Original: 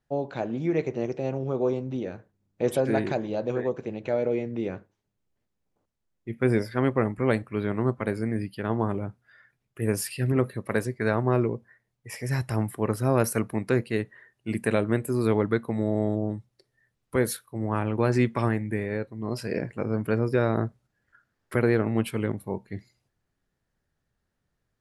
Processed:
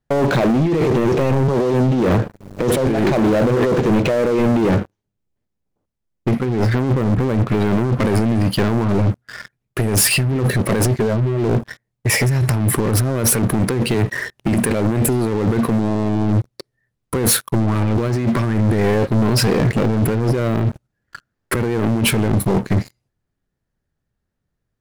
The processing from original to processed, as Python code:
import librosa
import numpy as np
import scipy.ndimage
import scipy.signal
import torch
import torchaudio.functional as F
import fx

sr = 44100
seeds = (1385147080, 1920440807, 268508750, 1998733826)

y = fx.band_squash(x, sr, depth_pct=70, at=(1.48, 2.87))
y = fx.lowpass(y, sr, hz=1100.0, slope=6, at=(6.45, 7.49))
y = fx.spec_expand(y, sr, power=2.0, at=(10.99, 11.44))
y = fx.band_squash(y, sr, depth_pct=40, at=(13.94, 14.48))
y = fx.low_shelf(y, sr, hz=470.0, db=6.0)
y = fx.over_compress(y, sr, threshold_db=-30.0, ratio=-1.0)
y = fx.leveller(y, sr, passes=5)